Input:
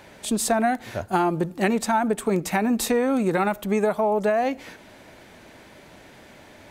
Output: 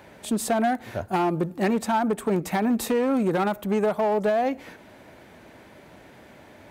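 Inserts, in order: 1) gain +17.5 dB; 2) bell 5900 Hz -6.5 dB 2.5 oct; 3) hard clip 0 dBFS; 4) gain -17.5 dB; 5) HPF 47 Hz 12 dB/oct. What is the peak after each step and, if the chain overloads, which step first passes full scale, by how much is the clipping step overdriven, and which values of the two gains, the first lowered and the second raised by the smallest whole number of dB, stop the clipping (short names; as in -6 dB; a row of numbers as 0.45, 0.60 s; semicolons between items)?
+9.0, +8.0, 0.0, -17.5, -15.0 dBFS; step 1, 8.0 dB; step 1 +9.5 dB, step 4 -9.5 dB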